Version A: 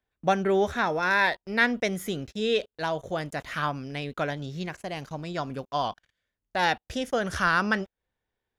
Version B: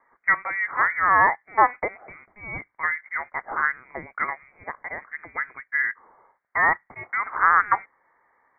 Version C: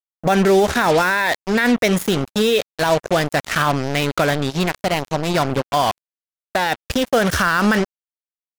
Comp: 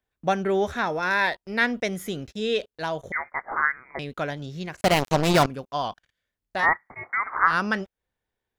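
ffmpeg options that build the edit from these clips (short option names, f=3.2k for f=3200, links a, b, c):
-filter_complex "[1:a]asplit=2[a][b];[0:a]asplit=4[c][d][e][f];[c]atrim=end=3.122[g];[a]atrim=start=3.118:end=3.992[h];[d]atrim=start=3.988:end=4.812[i];[2:a]atrim=start=4.808:end=5.462[j];[e]atrim=start=5.458:end=6.67[k];[b]atrim=start=6.57:end=7.55[l];[f]atrim=start=7.45[m];[g][h]acrossfade=d=0.004:c1=hsin:c2=hsin[n];[n][i]acrossfade=d=0.004:c1=hsin:c2=hsin[o];[o][j]acrossfade=d=0.004:c1=hsin:c2=hsin[p];[p][k]acrossfade=d=0.004:c1=hsin:c2=hsin[q];[q][l]acrossfade=d=0.1:c1=tri:c2=tri[r];[r][m]acrossfade=d=0.1:c1=tri:c2=tri"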